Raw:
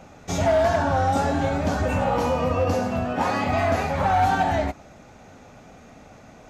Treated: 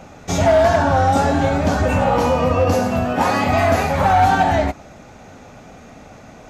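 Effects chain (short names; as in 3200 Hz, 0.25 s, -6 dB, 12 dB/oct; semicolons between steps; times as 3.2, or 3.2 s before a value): 2.72–4.13 high shelf 11000 Hz +12 dB; gain +6 dB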